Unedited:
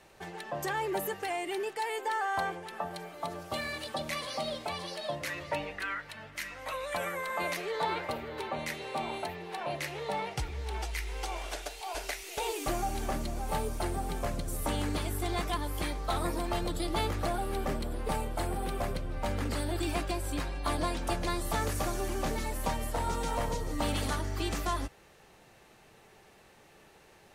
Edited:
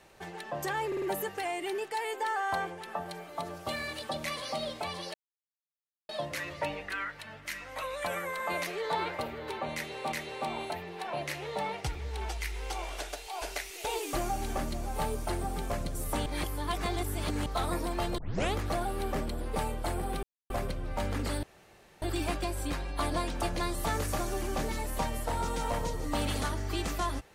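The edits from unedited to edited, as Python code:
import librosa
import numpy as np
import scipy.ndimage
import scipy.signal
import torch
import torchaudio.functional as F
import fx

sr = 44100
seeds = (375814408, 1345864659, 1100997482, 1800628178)

y = fx.edit(x, sr, fx.stutter(start_s=0.87, slice_s=0.05, count=4),
    fx.insert_silence(at_s=4.99, length_s=0.95),
    fx.repeat(start_s=8.65, length_s=0.37, count=2),
    fx.reverse_span(start_s=14.79, length_s=1.2),
    fx.tape_start(start_s=16.71, length_s=0.36),
    fx.insert_silence(at_s=18.76, length_s=0.27),
    fx.insert_room_tone(at_s=19.69, length_s=0.59), tone=tone)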